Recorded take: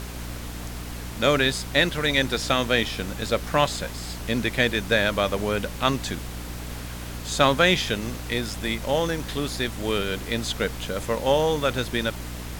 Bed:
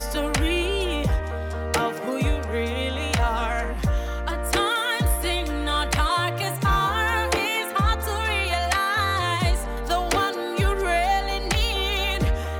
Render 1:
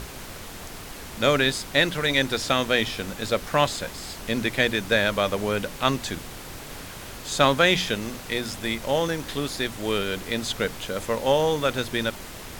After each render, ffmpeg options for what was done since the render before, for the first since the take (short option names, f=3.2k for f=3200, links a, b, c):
-af "bandreject=f=60:t=h:w=4,bandreject=f=120:t=h:w=4,bandreject=f=180:t=h:w=4,bandreject=f=240:t=h:w=4,bandreject=f=300:t=h:w=4"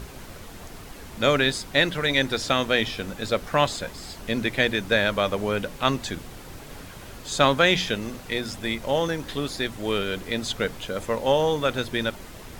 -af "afftdn=nr=6:nf=-39"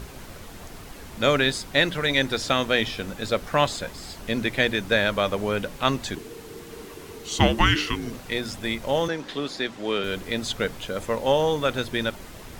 -filter_complex "[0:a]asettb=1/sr,asplit=3[a][b][c];[a]atrim=end=6.154[d];[b]atrim=start=6.15:end=8.13,asetpts=PTS-STARTPTS,afade=t=in:d=0.004:c=qsin,afade=t=out:st=1.976:d=0.004:c=qsin,afreqshift=-480[e];[c]atrim=start=8.126[f];[d][e]acrossfade=d=0.004:c1=hsin:c2=qsin[g];[g][f]acrossfade=d=0.004:c1=qsin:c2=hsin,asettb=1/sr,asplit=3[h][i][j];[h]atrim=end=9.084[k];[i]atrim=start=9.08:end=10.04,asetpts=PTS-STARTPTS,afade=t=in:d=0.004:c=qsin,afade=t=out:st=0.956:d=0.004:c=qsin,acrossover=split=160 7000:gain=0.141 1 0.2[l][m][n];[l][m][n]amix=inputs=3:normalize=0[o];[j]atrim=start=10.036[p];[k][o]acrossfade=d=0.004:c1=hsin:c2=qsin[q];[q][p]acrossfade=d=0.004:c1=qsin:c2=hsin"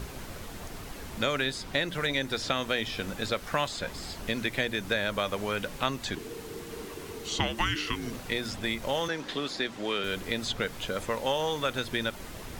-filter_complex "[0:a]acrossover=split=950|5600[a][b][c];[a]acompressor=threshold=-31dB:ratio=4[d];[b]acompressor=threshold=-29dB:ratio=4[e];[c]acompressor=threshold=-46dB:ratio=4[f];[d][e][f]amix=inputs=3:normalize=0"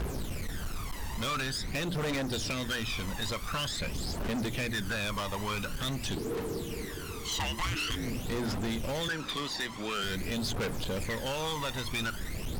-af "aphaser=in_gain=1:out_gain=1:delay=1.1:decay=0.66:speed=0.47:type=triangular,volume=29.5dB,asoftclip=hard,volume=-29.5dB"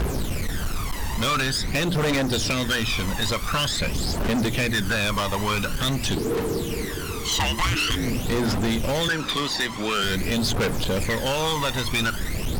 -af "volume=9.5dB"